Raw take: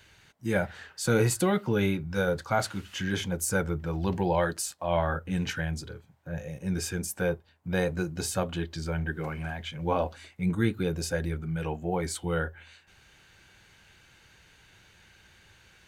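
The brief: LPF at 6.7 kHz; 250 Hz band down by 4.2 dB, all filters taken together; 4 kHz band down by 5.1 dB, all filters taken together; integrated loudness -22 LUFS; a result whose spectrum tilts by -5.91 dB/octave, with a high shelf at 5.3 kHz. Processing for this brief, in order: low-pass 6.7 kHz; peaking EQ 250 Hz -7 dB; peaking EQ 4 kHz -4 dB; treble shelf 5.3 kHz -5 dB; trim +10.5 dB

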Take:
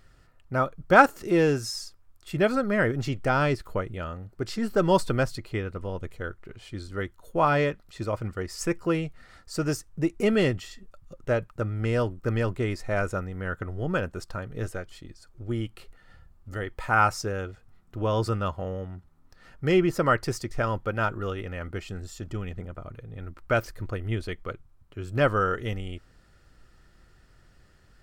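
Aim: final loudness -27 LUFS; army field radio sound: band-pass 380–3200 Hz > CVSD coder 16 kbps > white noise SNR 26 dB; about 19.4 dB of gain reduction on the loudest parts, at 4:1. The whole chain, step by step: compression 4:1, threshold -34 dBFS; band-pass 380–3200 Hz; CVSD coder 16 kbps; white noise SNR 26 dB; trim +15 dB

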